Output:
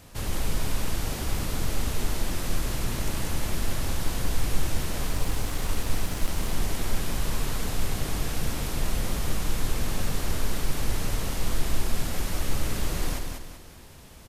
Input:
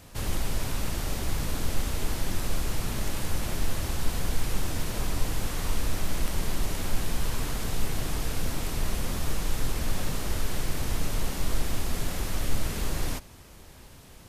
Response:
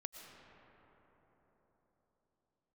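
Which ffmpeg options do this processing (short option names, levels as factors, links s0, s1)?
-filter_complex "[0:a]aecho=1:1:192|384|576|768|960:0.562|0.214|0.0812|0.0309|0.0117,asettb=1/sr,asplit=3[s0][s1][s2];[s0]atrim=end=5.094[s3];[s1]atrim=start=5.09:end=6.53,asetpts=PTS-STARTPTS,afade=t=in:d=0.004:c=qsin,afade=t=out:st=1.436:d=0.004:c=qsin,aeval=exprs='sgn(val(0))*max(abs(val(0))-0.00708,0)':c=same[s4];[s2]atrim=start=6.526[s5];[s3][s4]acrossfade=d=0.004:c1=hsin:c2=qsin[s6];[s6][s5]acrossfade=d=0.004:c1=qsin:c2=hsin"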